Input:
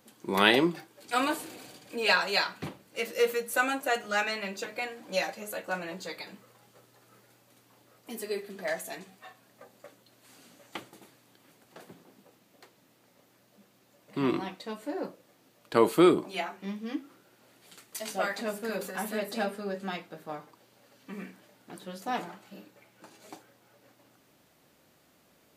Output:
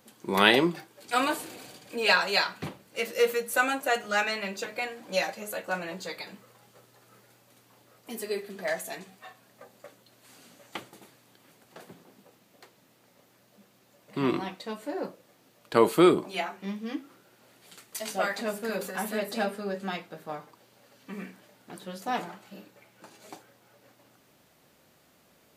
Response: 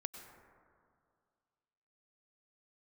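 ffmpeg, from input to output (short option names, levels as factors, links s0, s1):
-af "equalizer=f=300:w=4.3:g=-3,volume=1.26"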